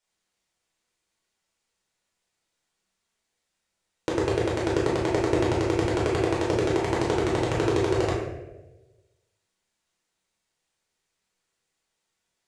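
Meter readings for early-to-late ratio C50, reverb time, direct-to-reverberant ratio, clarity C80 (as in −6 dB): 2.0 dB, 1.1 s, −5.0 dB, 5.0 dB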